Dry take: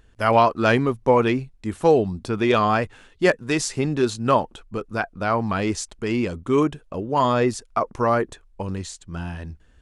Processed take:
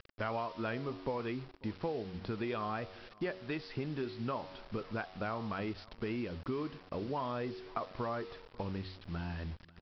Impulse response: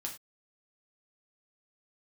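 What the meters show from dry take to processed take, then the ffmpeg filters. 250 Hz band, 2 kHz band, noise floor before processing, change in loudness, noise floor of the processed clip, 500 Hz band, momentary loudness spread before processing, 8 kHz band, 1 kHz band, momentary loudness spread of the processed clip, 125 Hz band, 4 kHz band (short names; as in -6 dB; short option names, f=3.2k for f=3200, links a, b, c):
-15.5 dB, -17.0 dB, -55 dBFS, -17.5 dB, -59 dBFS, -18.0 dB, 14 LU, under -35 dB, -18.5 dB, 5 LU, -14.0 dB, -15.5 dB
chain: -af "lowpass=3.6k,bandreject=f=93.3:t=h:w=4,bandreject=f=186.6:t=h:w=4,bandreject=f=279.9:t=h:w=4,bandreject=f=373.2:t=h:w=4,bandreject=f=466.5:t=h:w=4,bandreject=f=559.8:t=h:w=4,bandreject=f=653.1:t=h:w=4,bandreject=f=746.4:t=h:w=4,bandreject=f=839.7:t=h:w=4,bandreject=f=933:t=h:w=4,bandreject=f=1.0263k:t=h:w=4,bandreject=f=1.1196k:t=h:w=4,bandreject=f=1.2129k:t=h:w=4,bandreject=f=1.3062k:t=h:w=4,acompressor=threshold=-30dB:ratio=6,aresample=11025,acrusher=bits=7:mix=0:aa=0.000001,aresample=44100,aecho=1:1:545:0.0708,volume=-5dB"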